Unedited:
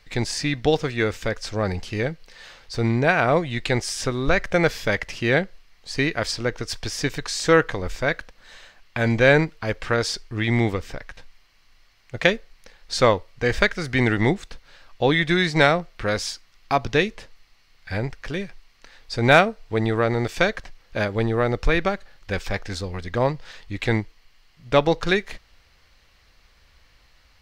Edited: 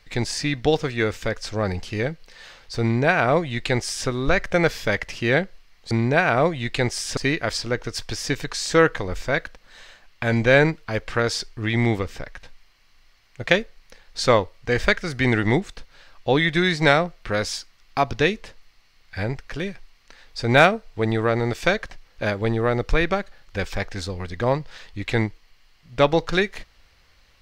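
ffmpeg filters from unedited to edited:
-filter_complex "[0:a]asplit=3[a][b][c];[a]atrim=end=5.912[d];[b]atrim=start=2.818:end=4.082[e];[c]atrim=start=5.908[f];[d][e]acrossfade=d=0.004:c1=hsin:c2=hsin[g];[g][f]acrossfade=d=0.004:c1=hsin:c2=hsin"

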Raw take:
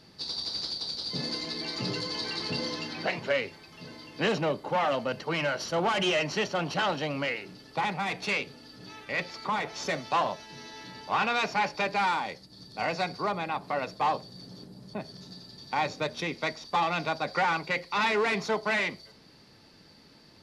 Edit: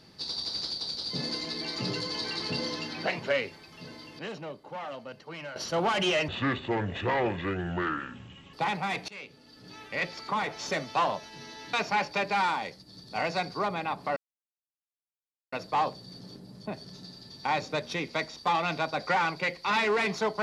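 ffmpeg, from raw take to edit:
-filter_complex "[0:a]asplit=8[a][b][c][d][e][f][g][h];[a]atrim=end=4.192[i];[b]atrim=start=4.188:end=5.562,asetpts=PTS-STARTPTS,volume=-11.5dB[j];[c]atrim=start=5.558:end=6.284[k];[d]atrim=start=6.28:end=7.7,asetpts=PTS-STARTPTS,asetrate=27783,aresample=44100[l];[e]atrim=start=7.696:end=8.25,asetpts=PTS-STARTPTS,afade=t=out:st=0.55:d=0.004:c=hsin:silence=0.0841395[m];[f]atrim=start=8.25:end=10.902,asetpts=PTS-STARTPTS,afade=t=in:d=0.79:silence=0.0841395[n];[g]atrim=start=11.368:end=13.8,asetpts=PTS-STARTPTS,afade=t=out:st=2.428:d=0.004:c=hsin,apad=pad_dur=1.36[o];[h]atrim=start=13.8,asetpts=PTS-STARTPTS,afade=t=in:d=0.004:c=hsin[p];[i][j]acrossfade=d=0.004:c1=hsin:c2=hsin[q];[q][k]acrossfade=d=0.004:c1=hsin:c2=hsin[r];[r][l]acrossfade=d=0.004:c1=hsin:c2=hsin[s];[m][n]concat=n=2:v=0:a=1[t];[s][t]acrossfade=d=0.004:c1=hsin:c2=hsin[u];[o][p]concat=n=2:v=0:a=1[v];[u][v]acrossfade=d=0.004:c1=hsin:c2=hsin"

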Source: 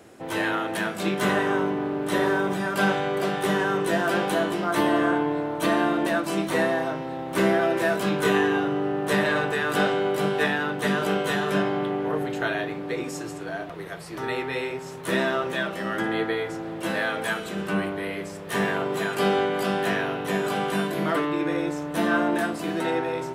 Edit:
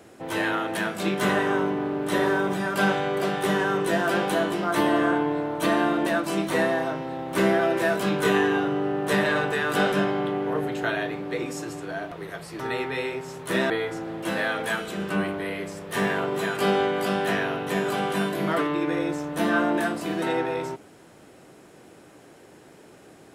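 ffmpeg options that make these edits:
-filter_complex "[0:a]asplit=3[a][b][c];[a]atrim=end=9.922[d];[b]atrim=start=11.498:end=15.282[e];[c]atrim=start=16.278[f];[d][e]acrossfade=d=0.004:c1=hsin:c2=hsin[g];[g][f]acrossfade=d=0.004:c1=hsin:c2=hsin"

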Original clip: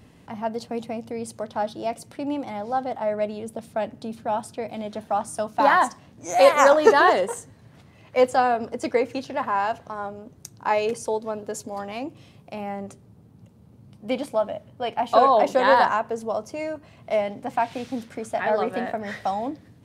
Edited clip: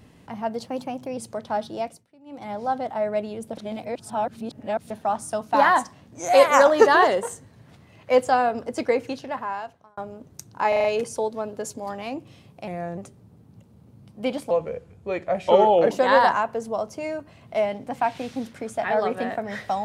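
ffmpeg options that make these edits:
-filter_complex "[0:a]asplit=16[a][b][c][d][e][f][g][h][i][j][k][l][m][n][o][p];[a]atrim=end=0.664[q];[b]atrim=start=0.66:end=1.23,asetpts=PTS-STARTPTS,asetrate=48951,aresample=44100[r];[c]atrim=start=1.226:end=2.11,asetpts=PTS-STARTPTS,afade=t=out:st=0.614:d=0.27:silence=0.0630957[s];[d]atrim=start=2.11:end=2.31,asetpts=PTS-STARTPTS,volume=-24dB[t];[e]atrim=start=2.31:end=3.632,asetpts=PTS-STARTPTS,afade=t=in:d=0.27:silence=0.0630957[u];[f]atrim=start=3.628:end=4.962,asetpts=PTS-STARTPTS,areverse[v];[g]atrim=start=4.958:end=10.03,asetpts=PTS-STARTPTS,afade=t=out:st=4.112:d=0.96[w];[h]atrim=start=10.03:end=10.782,asetpts=PTS-STARTPTS,afade=t=in:d=0.004:c=hsin[x];[i]atrim=start=10.738:end=10.782[y];[j]atrim=start=10.738:end=10.782[z];[k]atrim=start=10.738:end=10.782[aa];[l]atrim=start=10.738:end=12.574[ab];[m]atrim=start=12.57:end=12.83,asetpts=PTS-STARTPTS,asetrate=37926,aresample=44100[ac];[n]atrim=start=12.826:end=14.364[ad];[o]atrim=start=14.36:end=15.47,asetpts=PTS-STARTPTS,asetrate=34839,aresample=44100,atrim=end_sample=61963,asetpts=PTS-STARTPTS[ae];[p]atrim=start=15.466[af];[q][r]acrossfade=d=0.004:c1=hsin:c2=hsin[ag];[s][t][u]concat=n=3:v=0:a=1[ah];[ag][ah]acrossfade=d=0.004:c1=hsin:c2=hsin[ai];[ai][v]acrossfade=d=0.004:c1=hsin:c2=hsin[aj];[w][x]concat=n=2:v=0:a=1[ak];[aj][ak]acrossfade=d=0.004:c1=hsin:c2=hsin[al];[al][y]acrossfade=d=0.004:c1=hsin:c2=hsin[am];[am][z]acrossfade=d=0.004:c1=hsin:c2=hsin[an];[an][aa]acrossfade=d=0.004:c1=hsin:c2=hsin[ao];[ao][ab]acrossfade=d=0.004:c1=hsin:c2=hsin[ap];[ap][ac]acrossfade=d=0.004:c1=hsin:c2=hsin[aq];[aq][ad]acrossfade=d=0.004:c1=hsin:c2=hsin[ar];[ar][ae]acrossfade=d=0.004:c1=hsin:c2=hsin[as];[as][af]acrossfade=d=0.004:c1=hsin:c2=hsin"

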